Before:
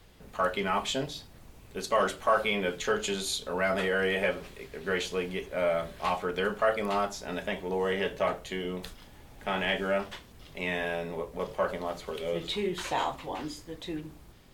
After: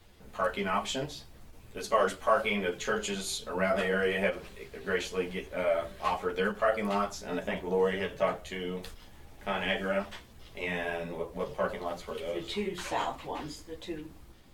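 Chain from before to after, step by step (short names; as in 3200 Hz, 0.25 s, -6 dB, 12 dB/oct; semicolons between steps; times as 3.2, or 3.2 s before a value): dynamic EQ 3700 Hz, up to -4 dB, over -50 dBFS, Q 4.7; chorus voices 6, 1.1 Hz, delay 12 ms, depth 3.4 ms; ending taper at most 280 dB/s; gain +1.5 dB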